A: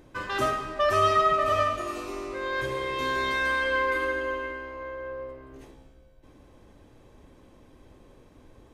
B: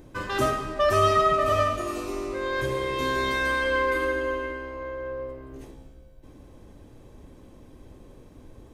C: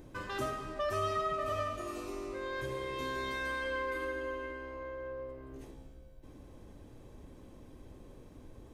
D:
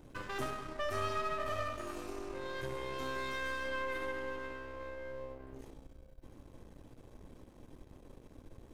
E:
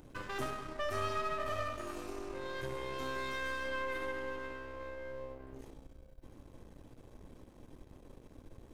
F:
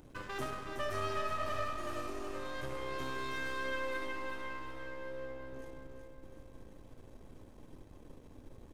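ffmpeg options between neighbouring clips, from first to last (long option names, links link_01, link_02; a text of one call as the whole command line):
ffmpeg -i in.wav -af "equalizer=frequency=1800:width=0.3:gain=-6.5,volume=6.5dB" out.wav
ffmpeg -i in.wav -af "acompressor=threshold=-44dB:ratio=1.5,volume=-3.5dB" out.wav
ffmpeg -i in.wav -af "aeval=exprs='if(lt(val(0),0),0.251*val(0),val(0))':channel_layout=same,volume=1dB" out.wav
ffmpeg -i in.wav -af "acompressor=mode=upward:threshold=-58dB:ratio=2.5" out.wav
ffmpeg -i in.wav -af "aecho=1:1:372|744|1116|1488|1860|2232:0.501|0.246|0.12|0.059|0.0289|0.0142,volume=-1dB" out.wav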